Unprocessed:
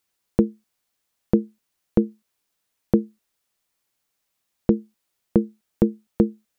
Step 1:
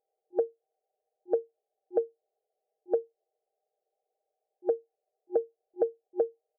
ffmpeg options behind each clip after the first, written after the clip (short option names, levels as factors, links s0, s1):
-af "afftfilt=real='re*between(b*sr/4096,360,810)':imag='im*between(b*sr/4096,360,810)':win_size=4096:overlap=0.75,acompressor=threshold=0.0158:ratio=3,aecho=1:1:6.5:0.61,volume=2.24"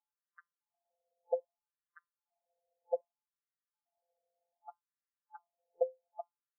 -af "acompressor=threshold=0.0501:ratio=3,afftfilt=real='hypot(re,im)*cos(PI*b)':imag='0':win_size=1024:overlap=0.75,afftfilt=real='re*between(b*sr/1024,590*pow(1500/590,0.5+0.5*sin(2*PI*0.64*pts/sr))/1.41,590*pow(1500/590,0.5+0.5*sin(2*PI*0.64*pts/sr))*1.41)':imag='im*between(b*sr/1024,590*pow(1500/590,0.5+0.5*sin(2*PI*0.64*pts/sr))/1.41,590*pow(1500/590,0.5+0.5*sin(2*PI*0.64*pts/sr))*1.41)':win_size=1024:overlap=0.75,volume=1.88"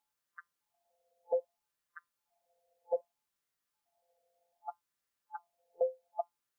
-af "alimiter=level_in=2.11:limit=0.0631:level=0:latency=1:release=24,volume=0.473,volume=2.66"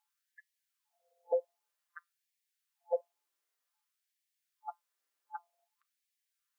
-af "afftfilt=real='re*gte(b*sr/1024,260*pow(1700/260,0.5+0.5*sin(2*PI*0.53*pts/sr)))':imag='im*gte(b*sr/1024,260*pow(1700/260,0.5+0.5*sin(2*PI*0.53*pts/sr)))':win_size=1024:overlap=0.75,volume=1.12"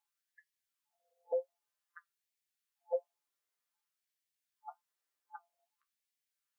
-af "flanger=delay=9.7:depth=5.3:regen=37:speed=0.57:shape=sinusoidal"